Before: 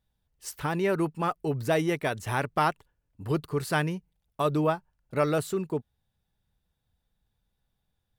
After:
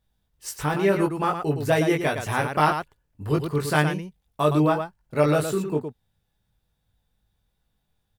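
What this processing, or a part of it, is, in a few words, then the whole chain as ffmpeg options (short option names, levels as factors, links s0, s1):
slapback doubling: -filter_complex "[0:a]asplit=3[s0][s1][s2];[s1]adelay=20,volume=0.708[s3];[s2]adelay=114,volume=0.473[s4];[s0][s3][s4]amix=inputs=3:normalize=0,volume=1.33"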